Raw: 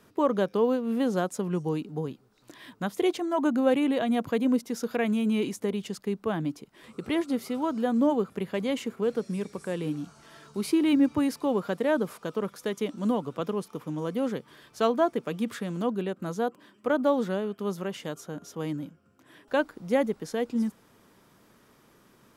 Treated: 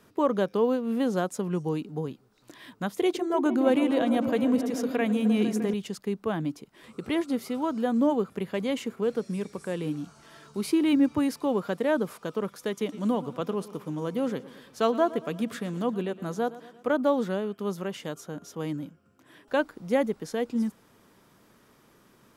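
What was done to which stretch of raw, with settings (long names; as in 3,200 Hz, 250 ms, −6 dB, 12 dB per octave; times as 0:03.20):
0:02.90–0:05.74: echo whose low-pass opens from repeat to repeat 153 ms, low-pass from 400 Hz, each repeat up 1 octave, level −6 dB
0:12.69–0:16.91: repeating echo 115 ms, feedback 53%, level −17 dB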